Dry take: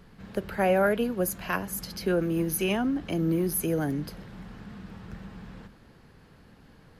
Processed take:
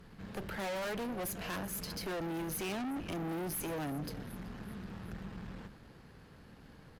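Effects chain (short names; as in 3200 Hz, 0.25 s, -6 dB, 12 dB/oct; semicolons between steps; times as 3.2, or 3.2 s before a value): frequency-shifting echo 0.378 s, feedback 52%, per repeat -37 Hz, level -22 dB; tube stage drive 37 dB, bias 0.55; gain +1 dB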